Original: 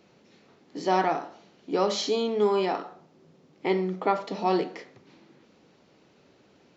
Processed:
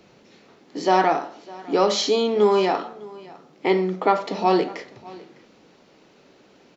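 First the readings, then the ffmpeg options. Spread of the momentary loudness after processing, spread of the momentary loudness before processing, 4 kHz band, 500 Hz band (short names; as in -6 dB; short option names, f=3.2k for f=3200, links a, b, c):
19 LU, 13 LU, +6.5 dB, +6.0 dB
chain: -filter_complex "[0:a]equalizer=f=81:t=o:w=2.8:g=-3,acrossover=split=130[a][b];[a]aphaser=in_gain=1:out_gain=1:delay=2.2:decay=0.77:speed=0.4:type=triangular[c];[b]acontrast=67[d];[c][d]amix=inputs=2:normalize=0,aecho=1:1:605:0.0841"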